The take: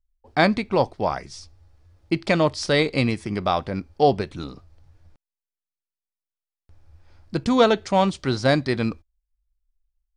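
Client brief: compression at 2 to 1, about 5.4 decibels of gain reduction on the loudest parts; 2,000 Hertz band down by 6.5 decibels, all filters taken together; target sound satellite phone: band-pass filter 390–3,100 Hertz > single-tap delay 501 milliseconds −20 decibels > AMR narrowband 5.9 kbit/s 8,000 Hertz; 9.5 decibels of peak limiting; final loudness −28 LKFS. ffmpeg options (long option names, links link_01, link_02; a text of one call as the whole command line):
ffmpeg -i in.wav -af "equalizer=frequency=2000:width_type=o:gain=-7.5,acompressor=threshold=-21dB:ratio=2,alimiter=limit=-19dB:level=0:latency=1,highpass=390,lowpass=3100,aecho=1:1:501:0.1,volume=7.5dB" -ar 8000 -c:a libopencore_amrnb -b:a 5900 out.amr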